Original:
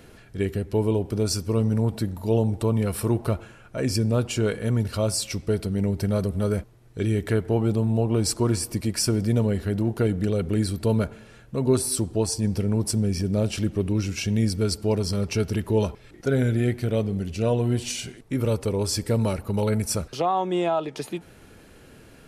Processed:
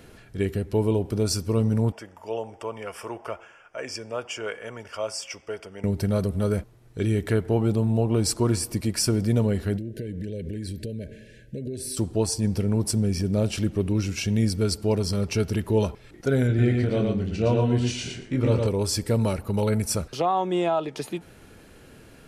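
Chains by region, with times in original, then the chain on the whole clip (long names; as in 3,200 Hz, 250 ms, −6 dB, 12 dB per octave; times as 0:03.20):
0:01.92–0:05.84: Butterworth band-reject 4,000 Hz, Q 2.7 + three-way crossover with the lows and the highs turned down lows −23 dB, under 490 Hz, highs −20 dB, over 6,700 Hz
0:09.77–0:11.97: high-shelf EQ 4,900 Hz −5 dB + downward compressor 12 to 1, threshold −28 dBFS + linear-phase brick-wall band-stop 650–1,500 Hz
0:16.47–0:18.67: high-frequency loss of the air 89 metres + double-tracking delay 24 ms −7 dB + repeating echo 114 ms, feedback 18%, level −3 dB
whole clip: no processing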